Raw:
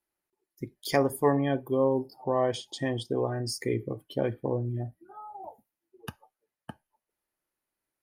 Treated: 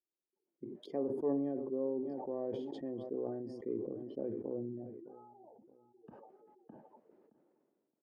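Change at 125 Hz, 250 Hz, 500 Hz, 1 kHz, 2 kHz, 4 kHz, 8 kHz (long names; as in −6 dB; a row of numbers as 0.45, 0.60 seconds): −19.0 dB, −7.0 dB, −9.5 dB, −17.5 dB, below −25 dB, below −20 dB, below −30 dB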